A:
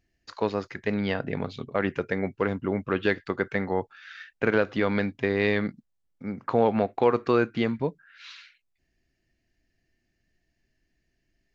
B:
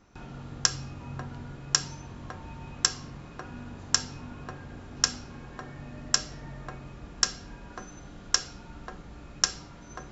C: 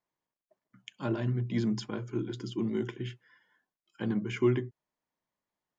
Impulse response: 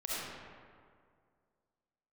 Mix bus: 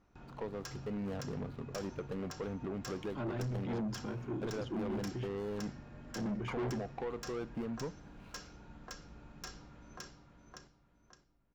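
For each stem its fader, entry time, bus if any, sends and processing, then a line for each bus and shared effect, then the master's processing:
-4.0 dB, 0.00 s, no send, no echo send, median filter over 25 samples; compressor, threshold -26 dBFS, peak gain reduction 10 dB
-9.5 dB, 0.00 s, no send, echo send -4 dB, dry
-1.5 dB, 2.15 s, no send, no echo send, dry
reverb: off
echo: feedback echo 0.565 s, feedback 32%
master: soft clip -33 dBFS, distortion -7 dB; high shelf 3300 Hz -8.5 dB

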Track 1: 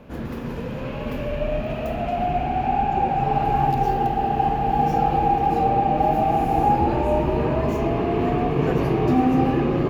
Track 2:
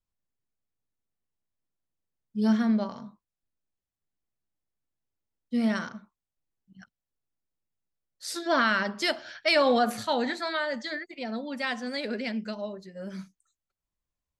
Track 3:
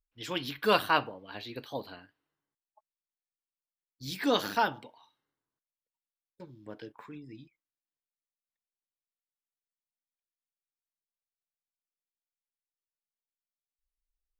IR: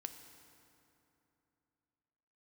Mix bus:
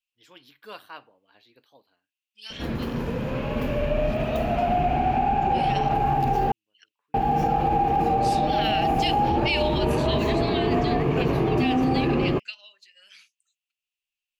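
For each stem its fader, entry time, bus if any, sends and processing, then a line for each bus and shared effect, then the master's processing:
+1.5 dB, 2.50 s, muted 6.52–7.14, no send, dry
-1.5 dB, 0.00 s, no send, resonant high-pass 2700 Hz, resonance Q 8.5
-15.5 dB, 0.00 s, no send, low shelf 210 Hz -10 dB; auto duck -20 dB, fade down 0.70 s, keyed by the second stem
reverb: off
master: limiter -14 dBFS, peak gain reduction 10 dB

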